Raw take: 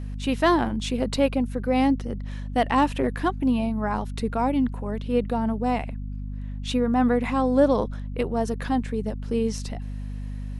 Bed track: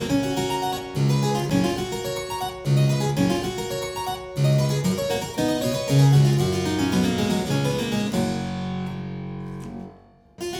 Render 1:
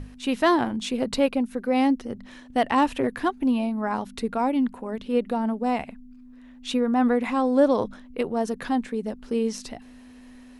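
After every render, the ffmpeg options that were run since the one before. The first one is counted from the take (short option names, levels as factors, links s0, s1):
-af "bandreject=f=50:t=h:w=6,bandreject=f=100:t=h:w=6,bandreject=f=150:t=h:w=6,bandreject=f=200:t=h:w=6"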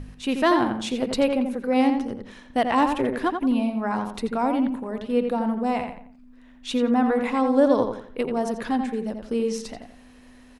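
-filter_complex "[0:a]asplit=2[s0][s1];[s1]adelay=86,lowpass=f=2900:p=1,volume=0.531,asplit=2[s2][s3];[s3]adelay=86,lowpass=f=2900:p=1,volume=0.35,asplit=2[s4][s5];[s5]adelay=86,lowpass=f=2900:p=1,volume=0.35,asplit=2[s6][s7];[s7]adelay=86,lowpass=f=2900:p=1,volume=0.35[s8];[s0][s2][s4][s6][s8]amix=inputs=5:normalize=0"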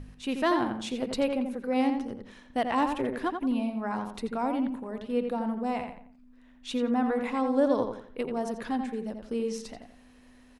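-af "volume=0.501"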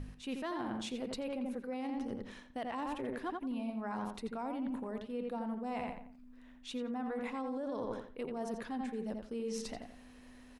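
-af "alimiter=limit=0.0841:level=0:latency=1:release=20,areverse,acompressor=threshold=0.0158:ratio=6,areverse"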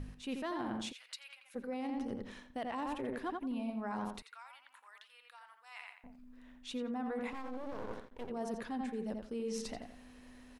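-filter_complex "[0:a]asplit=3[s0][s1][s2];[s0]afade=t=out:st=0.91:d=0.02[s3];[s1]highpass=f=1500:w=0.5412,highpass=f=1500:w=1.3066,afade=t=in:st=0.91:d=0.02,afade=t=out:st=1.54:d=0.02[s4];[s2]afade=t=in:st=1.54:d=0.02[s5];[s3][s4][s5]amix=inputs=3:normalize=0,asettb=1/sr,asplit=3[s6][s7][s8];[s6]atrim=end=4.224[s9];[s7]atrim=start=4.22:end=6.04,asetpts=PTS-STARTPTS,afade=t=in:d=0.004:c=qsin,afade=t=out:st=1.816:d=0.004:c=qsin,highpass=f=1300:w=0.5412,highpass=f=1300:w=1.3066[s10];[s8]atrim=start=6.036[s11];[s9][s10]acrossfade=d=0.004:c1=hsin:c2=qsin[s12];[s12][s11]acrossfade=d=0.004:c1=qsin:c2=hsin,asettb=1/sr,asplit=3[s13][s14][s15];[s13]atrim=end=7.334[s16];[s14]atrim=start=7.33:end=8.3,asetpts=PTS-STARTPTS,afade=t=in:d=0.004:c=qsin,afade=t=out:st=0.966:d=0.004:c=qsin,aeval=exprs='max(val(0),0)':c=same[s17];[s15]atrim=start=8.296[s18];[s16][s17]acrossfade=d=0.004:c1=hsin:c2=qsin[s19];[s19][s18]acrossfade=d=0.004:c1=qsin:c2=hsin"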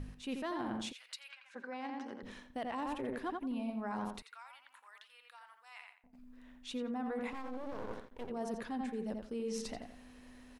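-filter_complex "[0:a]asettb=1/sr,asplit=3[s0][s1][s2];[s0]atrim=end=1.314[s3];[s1]atrim=start=1.31:end=2.23,asetpts=PTS-STARTPTS,afade=t=in:d=0.004:c=qsin,afade=t=out:st=0.916:d=0.004:c=qsin,highpass=350,equalizer=f=470:t=q:w=4:g=-7,equalizer=f=1000:t=q:w=4:g=6,equalizer=f=1600:t=q:w=4:g=10,lowpass=f=7300:w=0.5412,lowpass=f=7300:w=1.3066[s4];[s2]atrim=start=2.226[s5];[s3][s4]acrossfade=d=0.004:c1=hsin:c2=qsin[s6];[s6][s5]acrossfade=d=0.004:c1=qsin:c2=hsin,asplit=2[s7][s8];[s7]atrim=end=6.13,asetpts=PTS-STARTPTS,afade=t=out:st=5.61:d=0.52:silence=0.158489[s9];[s8]atrim=start=6.13,asetpts=PTS-STARTPTS,afade=t=in:d=0.004:c=hsin:silence=0.158489[s10];[s9][s10]concat=n=2:v=0:a=1"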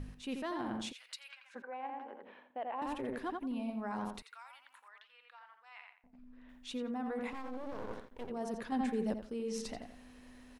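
-filter_complex "[0:a]asettb=1/sr,asplit=3[s0][s1][s2];[s0]atrim=end=1.624[s3];[s1]atrim=start=1.62:end=2.82,asetpts=PTS-STARTPTS,afade=t=in:d=0.004:c=qsin,afade=t=out:st=1.196:d=0.004:c=qsin,highpass=460,equalizer=f=560:t=q:w=4:g=3,equalizer=f=820:t=q:w=4:g=4,equalizer=f=1300:t=q:w=4:g=-4,equalizer=f=1900:t=q:w=4:g=-6,lowpass=f=2500:w=0.5412,lowpass=f=2500:w=1.3066[s4];[s2]atrim=start=2.816[s5];[s3][s4]acrossfade=d=0.004:c1=hsin:c2=qsin[s6];[s6][s5]acrossfade=d=0.004:c1=qsin:c2=hsin,asettb=1/sr,asplit=3[s7][s8][s9];[s7]atrim=end=4.884[s10];[s8]atrim=start=4.88:end=6.49,asetpts=PTS-STARTPTS,afade=t=in:d=0.004:c=qsin,afade=t=out:st=1.606:d=0.004:c=qsin,lowpass=3300[s11];[s9]atrim=start=6.486[s12];[s10][s11]acrossfade=d=0.004:c1=hsin:c2=qsin[s13];[s13][s12]acrossfade=d=0.004:c1=qsin:c2=hsin,asplit=3[s14][s15][s16];[s14]atrim=end=8.722[s17];[s15]atrim=start=8.718:end=9.142,asetpts=PTS-STARTPTS,volume=1.78[s18];[s16]atrim=start=9.138[s19];[s17][s18]acrossfade=d=0.004:c1=hsin:c2=hsin[s20];[s20][s19]acrossfade=d=0.004:c1=hsin:c2=hsin"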